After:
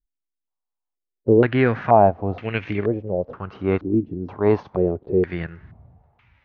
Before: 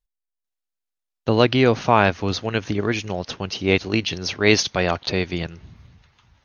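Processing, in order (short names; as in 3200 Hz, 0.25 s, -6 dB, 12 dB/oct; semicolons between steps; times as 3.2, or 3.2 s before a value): harmonic-percussive split percussive -9 dB; stepped low-pass 2.1 Hz 300–2300 Hz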